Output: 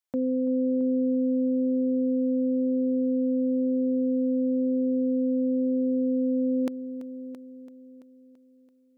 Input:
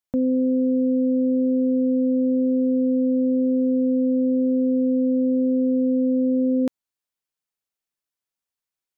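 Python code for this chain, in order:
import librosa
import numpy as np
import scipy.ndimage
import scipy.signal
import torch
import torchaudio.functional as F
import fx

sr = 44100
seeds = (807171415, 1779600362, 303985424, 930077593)

y = fx.highpass(x, sr, hz=350.0, slope=6)
y = fx.echo_heads(y, sr, ms=335, heads='first and second', feedback_pct=42, wet_db=-16)
y = F.gain(torch.from_numpy(y), -1.5).numpy()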